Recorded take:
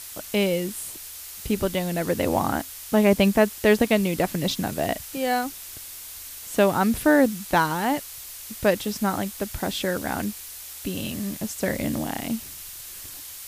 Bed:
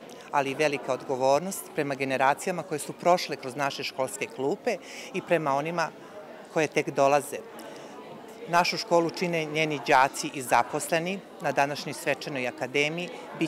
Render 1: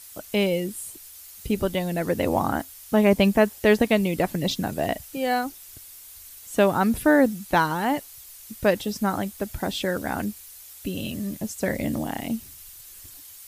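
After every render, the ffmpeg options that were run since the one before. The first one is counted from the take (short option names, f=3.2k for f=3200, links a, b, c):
-af "afftdn=nr=9:nf=-40"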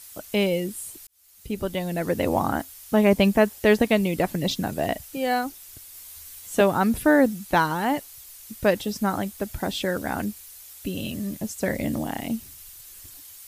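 -filter_complex "[0:a]asettb=1/sr,asplit=3[a][b][c];[a]atrim=end=5.934[d];[b]atrim=start=5.93:end=6.61,asetpts=PTS-STARTPTS,afade=t=in:d=0.004:c=qsin,afade=t=out:st=0.676:d=0.004:c=qsin,asplit=2[e][f];[f]adelay=12,volume=-2.5dB[g];[e][g]amix=inputs=2:normalize=0,atrim=end_sample=29988[h];[c]atrim=start=6.606[i];[d][h]acrossfade=d=0.004:c1=hsin:c2=qsin[j];[j][i]acrossfade=d=0.004:c1=qsin:c2=hsin,asplit=2[k][l];[k]atrim=end=1.07,asetpts=PTS-STARTPTS,afade=t=out:st=1.066:d=0.004:c=hsin[m];[l]atrim=start=1.07,asetpts=PTS-STARTPTS,afade=t=in:d=1.23:c=qsin[n];[m][n]concat=n=2:v=0:a=1"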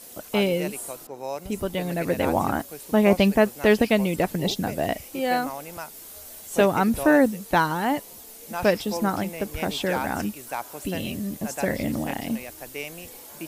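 -filter_complex "[1:a]volume=-9.5dB[a];[0:a][a]amix=inputs=2:normalize=0"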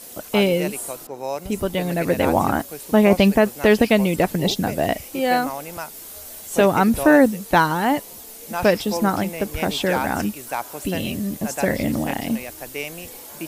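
-af "volume=4.5dB,alimiter=limit=-3dB:level=0:latency=1"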